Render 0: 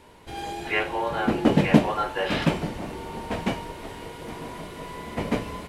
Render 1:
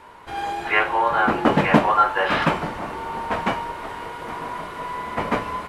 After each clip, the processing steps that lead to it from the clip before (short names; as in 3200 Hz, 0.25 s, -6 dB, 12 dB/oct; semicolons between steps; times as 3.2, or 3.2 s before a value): bell 1200 Hz +14.5 dB 1.7 oct; gain -2 dB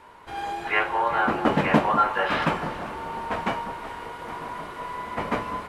echo with dull and thin repeats by turns 0.197 s, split 1400 Hz, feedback 53%, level -11 dB; gain -4 dB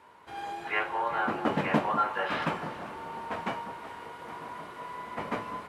HPF 91 Hz 12 dB/oct; gain -6.5 dB